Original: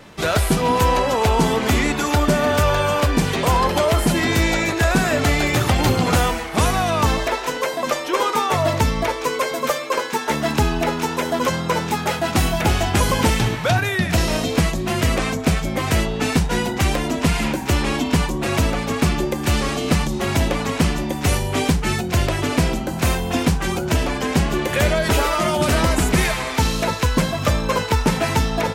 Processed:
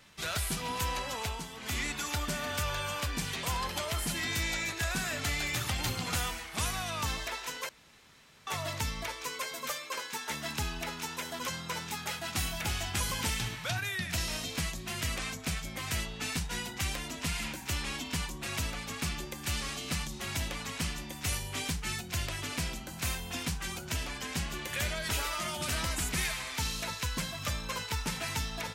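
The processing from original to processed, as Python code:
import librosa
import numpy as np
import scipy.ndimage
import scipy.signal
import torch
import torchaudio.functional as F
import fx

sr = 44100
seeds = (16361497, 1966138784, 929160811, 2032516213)

y = fx.edit(x, sr, fx.fade_down_up(start_s=1.19, length_s=0.62, db=-9.5, fade_s=0.28),
    fx.room_tone_fill(start_s=7.69, length_s=0.78), tone=tone)
y = fx.tone_stack(y, sr, knobs='5-5-5')
y = y * 10.0 ** (-2.0 / 20.0)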